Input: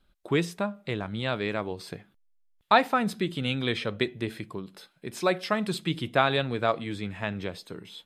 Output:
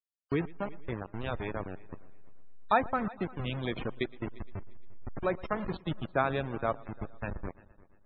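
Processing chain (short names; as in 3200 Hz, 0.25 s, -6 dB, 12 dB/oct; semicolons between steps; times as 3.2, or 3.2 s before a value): level-crossing sampler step -24.5 dBFS; multi-head echo 0.116 s, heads first and third, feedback 42%, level -22.5 dB; loudest bins only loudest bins 64; treble ducked by the level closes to 2500 Hz, closed at -20 dBFS; gain -5 dB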